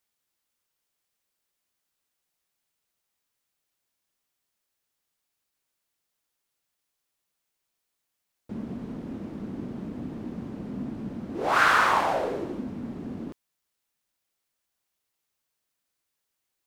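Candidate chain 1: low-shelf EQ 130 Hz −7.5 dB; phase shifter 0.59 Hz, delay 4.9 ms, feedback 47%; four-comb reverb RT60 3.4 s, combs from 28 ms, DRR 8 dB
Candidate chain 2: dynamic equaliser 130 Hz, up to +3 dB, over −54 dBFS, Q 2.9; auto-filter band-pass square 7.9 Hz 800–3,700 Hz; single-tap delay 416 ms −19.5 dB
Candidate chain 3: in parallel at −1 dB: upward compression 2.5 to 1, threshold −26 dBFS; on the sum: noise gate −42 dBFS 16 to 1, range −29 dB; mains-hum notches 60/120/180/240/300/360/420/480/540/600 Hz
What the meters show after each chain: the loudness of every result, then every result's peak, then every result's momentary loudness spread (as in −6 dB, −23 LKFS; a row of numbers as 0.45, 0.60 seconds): −26.5, −31.5, −22.5 LKFS; −5.5, −15.5, −2.5 dBFS; 20, 18, 16 LU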